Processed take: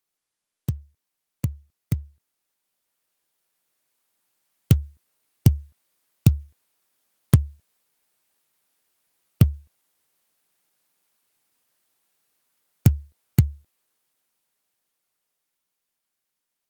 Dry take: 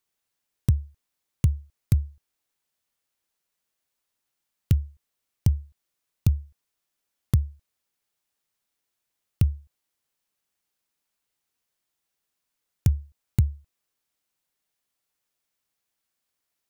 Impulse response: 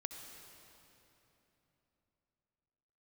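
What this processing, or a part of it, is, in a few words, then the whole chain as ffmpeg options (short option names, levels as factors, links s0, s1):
video call: -af "highpass=130,dynaudnorm=f=520:g=13:m=3.98" -ar 48000 -c:a libopus -b:a 24k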